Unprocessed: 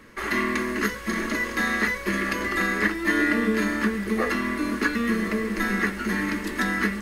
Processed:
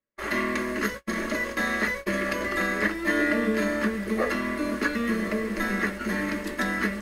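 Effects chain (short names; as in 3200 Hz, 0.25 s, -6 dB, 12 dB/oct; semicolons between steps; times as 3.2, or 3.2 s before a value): gate -31 dBFS, range -41 dB; bell 590 Hz +12 dB 0.25 oct; gain -2.5 dB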